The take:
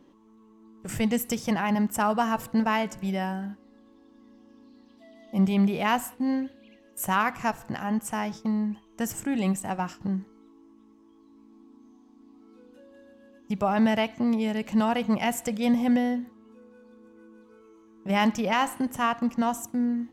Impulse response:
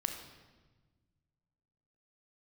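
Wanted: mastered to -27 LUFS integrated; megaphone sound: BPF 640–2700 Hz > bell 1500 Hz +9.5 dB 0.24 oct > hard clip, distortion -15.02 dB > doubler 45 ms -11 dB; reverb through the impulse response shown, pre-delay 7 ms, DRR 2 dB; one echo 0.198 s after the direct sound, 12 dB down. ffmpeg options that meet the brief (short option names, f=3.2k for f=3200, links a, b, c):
-filter_complex "[0:a]aecho=1:1:198:0.251,asplit=2[a][b];[1:a]atrim=start_sample=2205,adelay=7[c];[b][c]afir=irnorm=-1:irlink=0,volume=-3.5dB[d];[a][d]amix=inputs=2:normalize=0,highpass=640,lowpass=2.7k,equalizer=f=1.5k:t=o:w=0.24:g=9.5,asoftclip=type=hard:threshold=-17.5dB,asplit=2[e][f];[f]adelay=45,volume=-11dB[g];[e][g]amix=inputs=2:normalize=0,volume=2dB"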